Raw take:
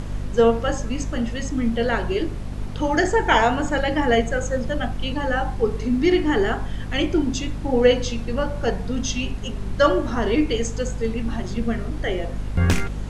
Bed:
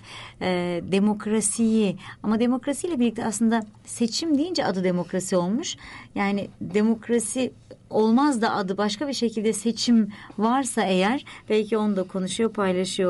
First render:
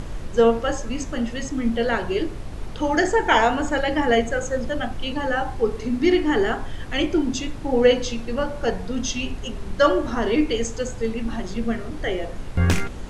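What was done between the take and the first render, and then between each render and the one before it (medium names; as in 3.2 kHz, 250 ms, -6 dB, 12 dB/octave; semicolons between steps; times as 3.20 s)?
de-hum 50 Hz, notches 5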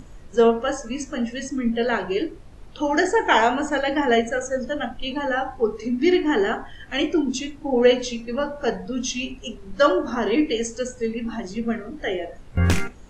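noise print and reduce 12 dB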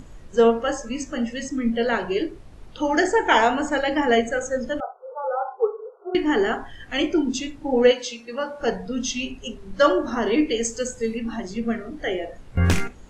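4.80–6.15 s: brick-wall FIR band-pass 380–1500 Hz; 7.91–8.59 s: high-pass 1.1 kHz -> 390 Hz 6 dB/octave; 10.63–11.18 s: treble shelf 7.5 kHz +11 dB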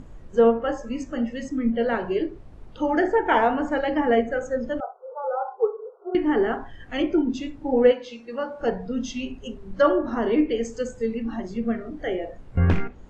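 treble shelf 2 kHz -11 dB; low-pass that closes with the level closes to 3 kHz, closed at -17.5 dBFS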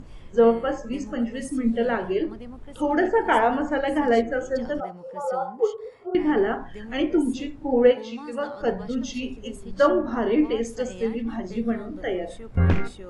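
add bed -19 dB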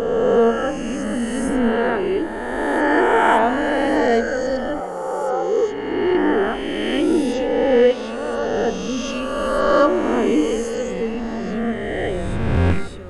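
reverse spectral sustain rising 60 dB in 2.49 s; modulated delay 213 ms, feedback 80%, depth 51 cents, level -23 dB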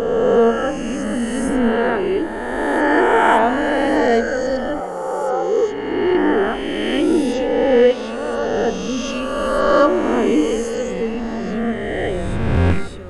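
trim +1.5 dB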